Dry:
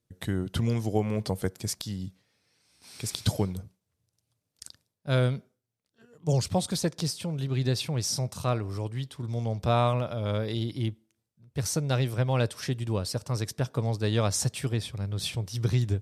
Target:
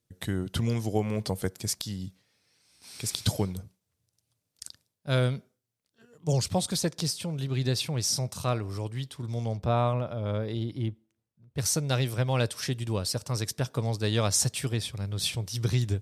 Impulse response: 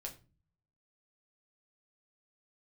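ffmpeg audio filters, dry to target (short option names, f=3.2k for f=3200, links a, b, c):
-af "asetnsamples=n=441:p=0,asendcmd='9.57 highshelf g -8;11.58 highshelf g 6',highshelf=f=2.4k:g=4,volume=-1dB"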